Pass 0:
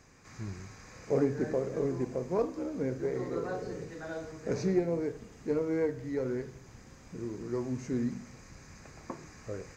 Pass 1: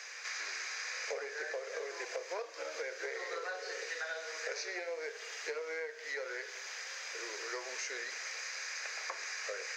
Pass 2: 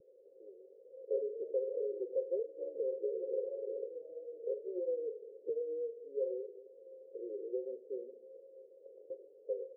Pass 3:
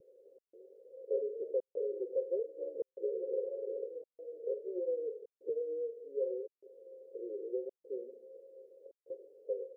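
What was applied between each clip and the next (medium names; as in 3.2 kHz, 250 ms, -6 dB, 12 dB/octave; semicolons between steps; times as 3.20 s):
steep high-pass 460 Hz 48 dB/octave; high-order bell 3 kHz +13.5 dB 2.4 oct; compression 12:1, threshold -42 dBFS, peak gain reduction 16.5 dB; trim +5.5 dB
vibrato 2.4 Hz 28 cents; rippled Chebyshev low-pass 550 Hz, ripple 6 dB; trim +9.5 dB
trance gate "xxxxx..xxxxxxxxx" 197 bpm -60 dB; trim +1 dB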